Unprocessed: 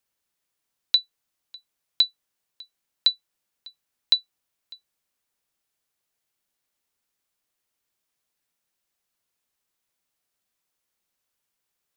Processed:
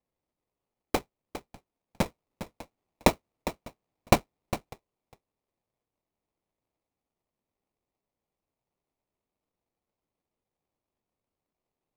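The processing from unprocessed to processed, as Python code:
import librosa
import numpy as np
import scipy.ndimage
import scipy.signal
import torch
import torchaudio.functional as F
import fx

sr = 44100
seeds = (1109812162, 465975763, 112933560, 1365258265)

y = fx.lowpass(x, sr, hz=fx.steps((0.0, 3000.0), (2.05, 7500.0), (4.73, 2800.0)), slope=12)
y = fx.sample_hold(y, sr, seeds[0], rate_hz=1600.0, jitter_pct=20)
y = y + 10.0 ** (-12.0 / 20.0) * np.pad(y, (int(406 * sr / 1000.0), 0))[:len(y)]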